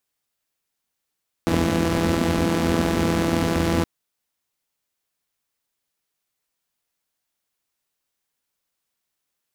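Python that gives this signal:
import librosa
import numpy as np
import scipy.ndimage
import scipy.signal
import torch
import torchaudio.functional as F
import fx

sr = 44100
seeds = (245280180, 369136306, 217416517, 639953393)

y = fx.engine_four(sr, seeds[0], length_s=2.37, rpm=5000, resonances_hz=(88.0, 220.0))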